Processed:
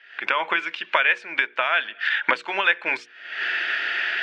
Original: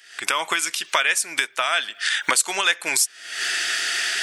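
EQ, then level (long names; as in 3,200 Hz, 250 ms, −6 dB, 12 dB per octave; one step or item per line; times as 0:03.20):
loudspeaker in its box 240–2,500 Hz, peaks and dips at 290 Hz −4 dB, 410 Hz −4 dB, 720 Hz −6 dB, 1,200 Hz −7 dB, 2,000 Hz −4 dB
mains-hum notches 60/120/180/240/300/360/420/480 Hz
+5.0 dB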